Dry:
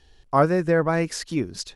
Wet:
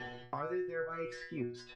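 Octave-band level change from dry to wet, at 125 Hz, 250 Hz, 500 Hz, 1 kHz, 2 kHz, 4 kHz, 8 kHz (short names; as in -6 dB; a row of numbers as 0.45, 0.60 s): -21.5 dB, -16.5 dB, -16.0 dB, -17.5 dB, -13.0 dB, -17.5 dB, under -25 dB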